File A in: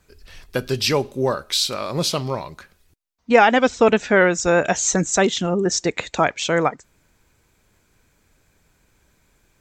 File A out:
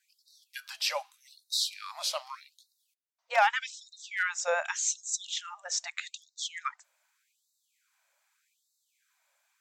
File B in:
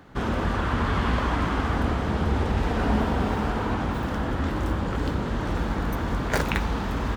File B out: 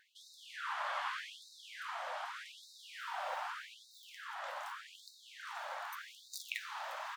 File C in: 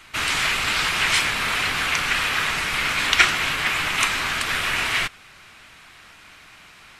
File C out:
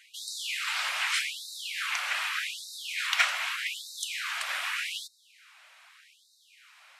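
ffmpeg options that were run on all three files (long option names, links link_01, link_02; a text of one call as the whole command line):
ffmpeg -i in.wav -af "asoftclip=type=hard:threshold=-5dB,afftfilt=real='re*gte(b*sr/1024,510*pow(3700/510,0.5+0.5*sin(2*PI*0.83*pts/sr)))':imag='im*gte(b*sr/1024,510*pow(3700/510,0.5+0.5*sin(2*PI*0.83*pts/sr)))':win_size=1024:overlap=0.75,volume=-8.5dB" out.wav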